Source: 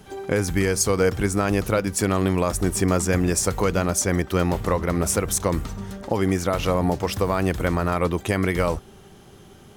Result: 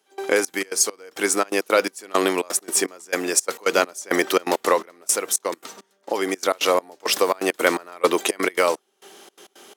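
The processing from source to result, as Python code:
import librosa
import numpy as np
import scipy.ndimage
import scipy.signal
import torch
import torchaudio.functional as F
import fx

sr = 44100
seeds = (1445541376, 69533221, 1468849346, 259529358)

y = fx.step_gate(x, sr, bpm=168, pattern='..xxx.x.xx.', floor_db=-24.0, edge_ms=4.5)
y = scipy.signal.sosfilt(scipy.signal.butter(4, 320.0, 'highpass', fs=sr, output='sos'), y)
y = fx.high_shelf(y, sr, hz=2300.0, db=8.5)
y = fx.rider(y, sr, range_db=10, speed_s=0.5)
y = fx.high_shelf(y, sr, hz=8600.0, db=-4.0)
y = y * 10.0 ** (2.0 / 20.0)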